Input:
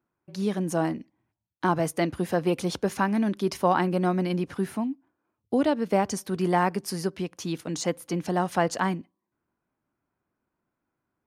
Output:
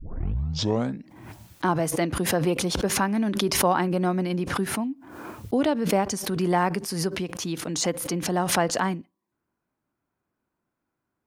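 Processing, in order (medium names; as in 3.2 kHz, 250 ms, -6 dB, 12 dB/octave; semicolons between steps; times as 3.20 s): tape start-up on the opening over 1.09 s; swell ahead of each attack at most 52 dB/s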